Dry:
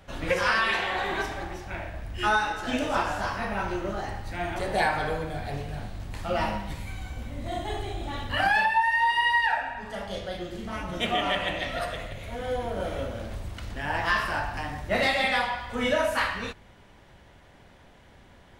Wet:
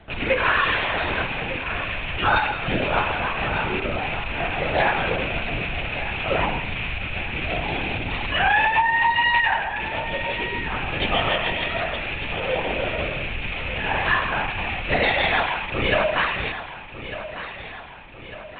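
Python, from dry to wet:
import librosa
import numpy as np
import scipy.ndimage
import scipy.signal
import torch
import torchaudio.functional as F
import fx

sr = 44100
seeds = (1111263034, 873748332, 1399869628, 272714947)

y = fx.rattle_buzz(x, sr, strikes_db=-44.0, level_db=-19.0)
y = fx.lpc_vocoder(y, sr, seeds[0], excitation='whisper', order=16)
y = fx.echo_feedback(y, sr, ms=1200, feedback_pct=52, wet_db=-12.5)
y = y * 10.0 ** (4.0 / 20.0)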